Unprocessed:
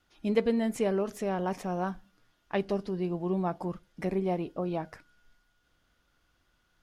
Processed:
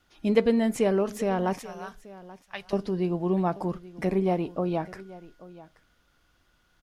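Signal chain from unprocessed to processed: 1.59–2.73 s: amplifier tone stack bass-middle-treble 10-0-10; on a send: delay 832 ms -19 dB; on the sum: trim +4.5 dB

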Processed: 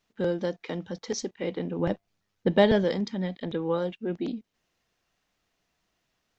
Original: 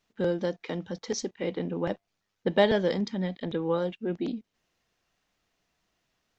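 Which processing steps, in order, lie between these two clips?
1.79–2.84 s: bass shelf 260 Hz +8 dB

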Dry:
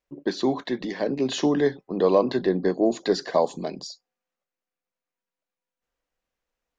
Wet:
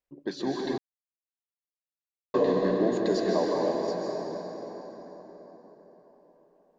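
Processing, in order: 3.34–3.88 s: low-pass 2.1 kHz 6 dB/octave; plate-style reverb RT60 4.9 s, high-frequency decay 0.6×, pre-delay 120 ms, DRR -3 dB; 0.78–2.34 s: mute; trim -7.5 dB

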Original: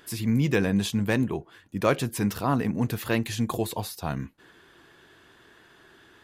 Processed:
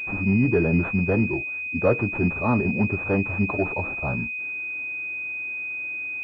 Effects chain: formant-preserving pitch shift -2.5 st; class-D stage that switches slowly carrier 2.5 kHz; trim +3.5 dB

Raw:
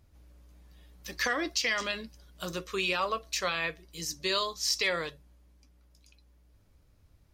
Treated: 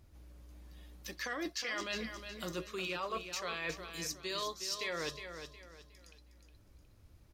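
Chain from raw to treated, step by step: peaking EQ 340 Hz +3.5 dB 0.33 oct; reverse; compression, threshold -37 dBFS, peak gain reduction 12.5 dB; reverse; feedback delay 363 ms, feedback 33%, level -8.5 dB; trim +1 dB

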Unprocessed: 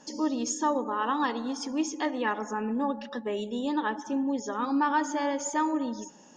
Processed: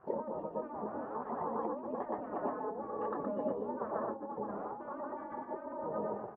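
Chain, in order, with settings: reverb removal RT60 1.2 s; feedback delay 119 ms, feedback 59%, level -8 dB; waveshaping leveller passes 3; compressor with a negative ratio -28 dBFS, ratio -1; Bessel high-pass 280 Hz, order 2; tilt EQ -2.5 dB/octave; doubling 24 ms -12 dB; spectral gate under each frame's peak -10 dB weak; low-pass 1 kHz 24 dB/octave

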